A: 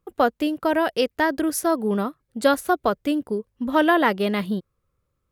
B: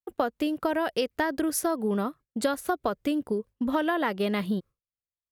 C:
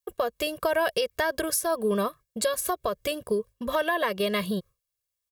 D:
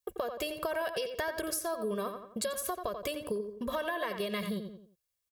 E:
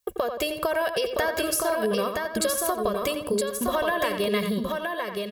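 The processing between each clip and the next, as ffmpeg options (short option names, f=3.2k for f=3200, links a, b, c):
-af "agate=range=-33dB:threshold=-37dB:ratio=3:detection=peak,acompressor=threshold=-23dB:ratio=6"
-af "highshelf=f=3.7k:g=9,aecho=1:1:1.8:0.89,alimiter=limit=-16.5dB:level=0:latency=1:release=166,volume=1dB"
-filter_complex "[0:a]asplit=2[a][b];[b]adelay=87,lowpass=f=3.3k:p=1,volume=-8.5dB,asplit=2[c][d];[d]adelay=87,lowpass=f=3.3k:p=1,volume=0.33,asplit=2[e][f];[f]adelay=87,lowpass=f=3.3k:p=1,volume=0.33,asplit=2[g][h];[h]adelay=87,lowpass=f=3.3k:p=1,volume=0.33[i];[a][c][e][g][i]amix=inputs=5:normalize=0,acompressor=threshold=-35dB:ratio=2.5"
-af "aecho=1:1:968:0.631,volume=8dB"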